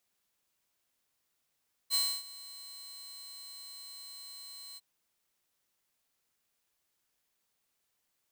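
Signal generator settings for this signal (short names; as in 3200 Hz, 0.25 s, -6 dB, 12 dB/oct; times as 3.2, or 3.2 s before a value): ADSR saw 4110 Hz, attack 44 ms, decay 0.28 s, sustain -20 dB, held 2.87 s, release 32 ms -23 dBFS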